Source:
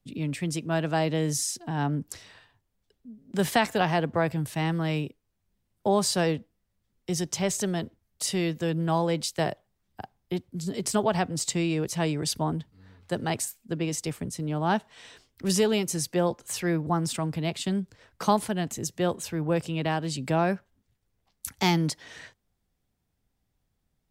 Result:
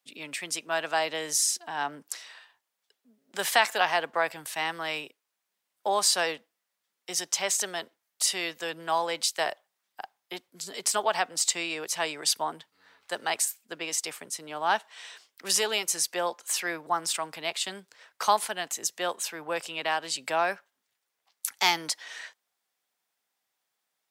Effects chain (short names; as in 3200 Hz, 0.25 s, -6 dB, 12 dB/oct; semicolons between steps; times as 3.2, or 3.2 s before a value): HPF 850 Hz 12 dB/oct; gain +4.5 dB